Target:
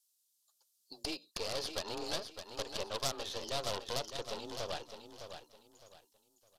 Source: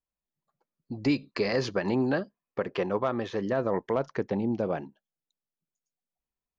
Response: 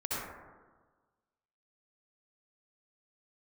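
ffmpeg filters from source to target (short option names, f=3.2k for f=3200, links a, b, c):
-filter_complex "[0:a]acrossover=split=3800[a][b];[b]acompressor=threshold=-58dB:ratio=4:attack=1:release=60[c];[a][c]amix=inputs=2:normalize=0,highpass=590,acrossover=split=1500[d][e];[e]acompressor=threshold=-51dB:ratio=6[f];[d][f]amix=inputs=2:normalize=0,afreqshift=29,aeval=exprs='0.106*(cos(1*acos(clip(val(0)/0.106,-1,1)))-cos(1*PI/2))+0.00841*(cos(8*acos(clip(val(0)/0.106,-1,1)))-cos(8*PI/2))':c=same,aexciter=amount=7.9:drive=9.8:freq=3.2k,aeval=exprs='clip(val(0),-1,0.0178)':c=same,asplit=2[g][h];[h]aecho=0:1:610|1220|1830:0.376|0.105|0.0295[i];[g][i]amix=inputs=2:normalize=0,aresample=32000,aresample=44100,volume=-6.5dB"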